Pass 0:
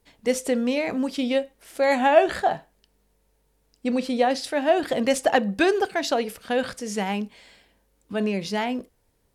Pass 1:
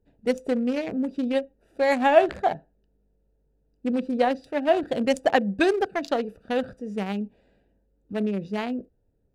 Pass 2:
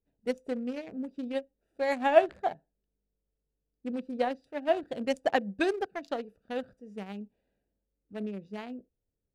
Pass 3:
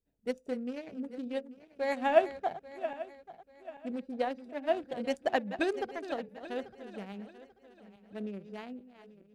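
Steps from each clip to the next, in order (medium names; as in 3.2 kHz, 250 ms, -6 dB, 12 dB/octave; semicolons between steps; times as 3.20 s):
local Wiener filter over 41 samples
upward expansion 1.5:1, over -37 dBFS; trim -3 dB
backward echo that repeats 419 ms, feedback 56%, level -12.5 dB; trim -3 dB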